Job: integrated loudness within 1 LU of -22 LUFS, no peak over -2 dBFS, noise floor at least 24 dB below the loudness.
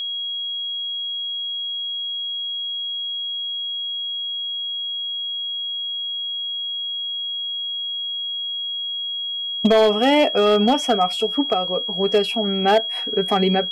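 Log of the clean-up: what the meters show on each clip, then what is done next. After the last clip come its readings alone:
clipped 0.7%; flat tops at -9.5 dBFS; steady tone 3300 Hz; tone level -24 dBFS; loudness -21.5 LUFS; peak -9.5 dBFS; loudness target -22.0 LUFS
-> clip repair -9.5 dBFS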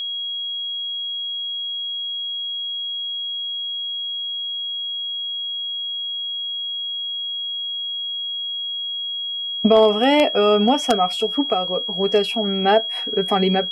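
clipped 0.0%; steady tone 3300 Hz; tone level -24 dBFS
-> notch 3300 Hz, Q 30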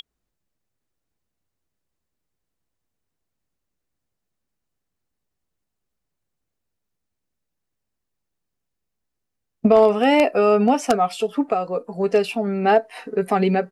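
steady tone none; loudness -19.5 LUFS; peak -1.5 dBFS; loudness target -22.0 LUFS
-> gain -2.5 dB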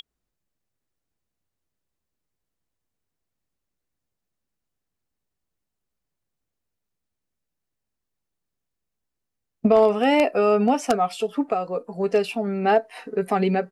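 loudness -22.0 LUFS; peak -4.0 dBFS; noise floor -83 dBFS

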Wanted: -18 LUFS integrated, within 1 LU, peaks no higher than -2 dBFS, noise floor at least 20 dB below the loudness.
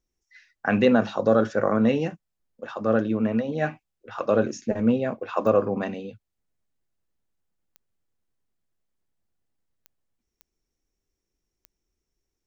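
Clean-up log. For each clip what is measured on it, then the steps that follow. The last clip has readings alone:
clicks 5; loudness -24.0 LUFS; peak -7.0 dBFS; loudness target -18.0 LUFS
-> de-click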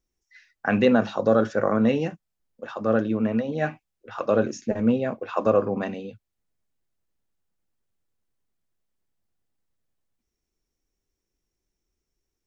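clicks 0; loudness -24.0 LUFS; peak -7.0 dBFS; loudness target -18.0 LUFS
-> gain +6 dB; limiter -2 dBFS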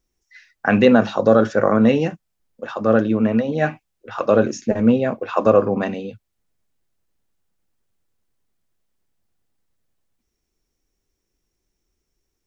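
loudness -18.0 LUFS; peak -2.0 dBFS; noise floor -76 dBFS

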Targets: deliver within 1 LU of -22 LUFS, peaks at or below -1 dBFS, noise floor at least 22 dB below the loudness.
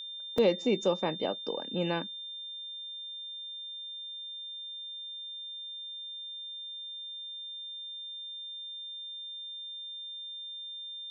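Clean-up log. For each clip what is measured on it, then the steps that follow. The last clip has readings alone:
dropouts 1; longest dropout 3.5 ms; steady tone 3600 Hz; tone level -39 dBFS; loudness -35.5 LUFS; peak -14.5 dBFS; loudness target -22.0 LUFS
-> interpolate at 0.38, 3.5 ms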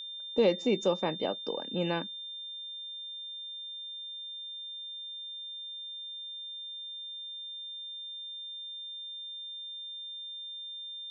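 dropouts 0; steady tone 3600 Hz; tone level -39 dBFS
-> notch 3600 Hz, Q 30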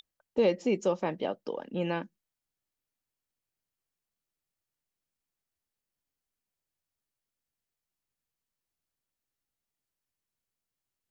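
steady tone none; loudness -31.0 LUFS; peak -15.0 dBFS; loudness target -22.0 LUFS
-> gain +9 dB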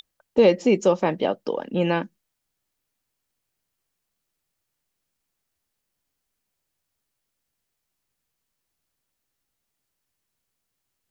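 loudness -22.0 LUFS; peak -6.0 dBFS; noise floor -80 dBFS

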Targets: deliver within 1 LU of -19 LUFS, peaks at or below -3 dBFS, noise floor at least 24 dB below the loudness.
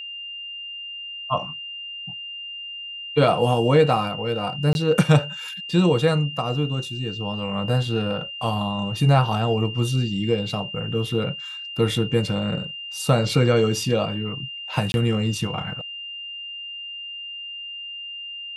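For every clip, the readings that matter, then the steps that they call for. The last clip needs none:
dropouts 2; longest dropout 21 ms; steady tone 2800 Hz; tone level -32 dBFS; loudness -24.0 LUFS; peak -4.5 dBFS; loudness target -19.0 LUFS
-> interpolate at 4.73/14.92, 21 ms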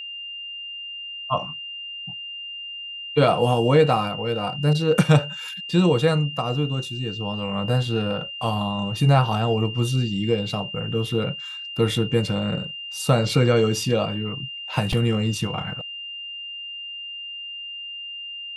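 dropouts 0; steady tone 2800 Hz; tone level -32 dBFS
-> notch 2800 Hz, Q 30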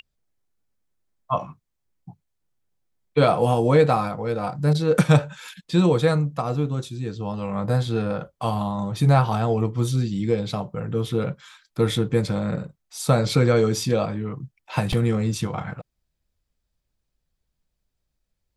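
steady tone none; loudness -23.0 LUFS; peak -4.5 dBFS; loudness target -19.0 LUFS
-> gain +4 dB; limiter -3 dBFS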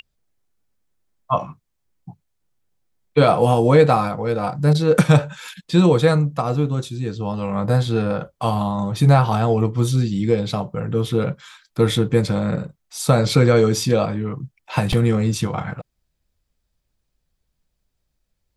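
loudness -19.0 LUFS; peak -3.0 dBFS; noise floor -74 dBFS

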